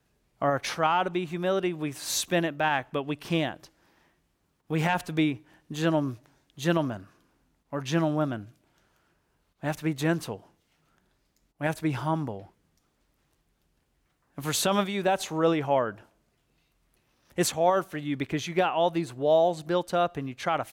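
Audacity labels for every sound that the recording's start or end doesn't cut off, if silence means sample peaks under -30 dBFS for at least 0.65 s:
4.710000	6.970000	sound
7.730000	8.390000	sound
9.630000	10.350000	sound
11.610000	12.380000	sound
14.380000	15.900000	sound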